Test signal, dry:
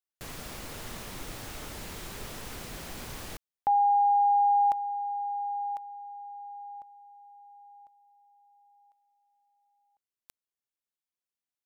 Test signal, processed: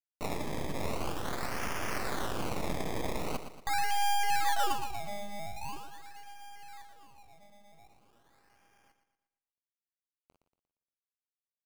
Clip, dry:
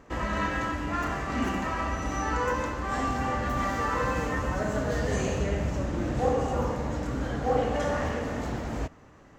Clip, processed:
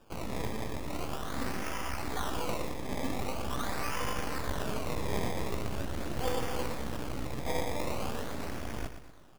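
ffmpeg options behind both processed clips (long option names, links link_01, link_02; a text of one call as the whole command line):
ffmpeg -i in.wav -filter_complex "[0:a]acrossover=split=130[link_01][link_02];[link_02]aexciter=amount=10.3:drive=1.1:freq=5100[link_03];[link_01][link_03]amix=inputs=2:normalize=0,aeval=exprs='max(val(0),0)':channel_layout=same,acrusher=bits=9:mix=0:aa=0.000001,flanger=delay=9:depth=9.3:regen=-41:speed=0.37:shape=sinusoidal,acrusher=samples=21:mix=1:aa=0.000001:lfo=1:lforange=21:lforate=0.43,aecho=1:1:117|234|351|468|585:0.316|0.139|0.0612|0.0269|0.0119" out.wav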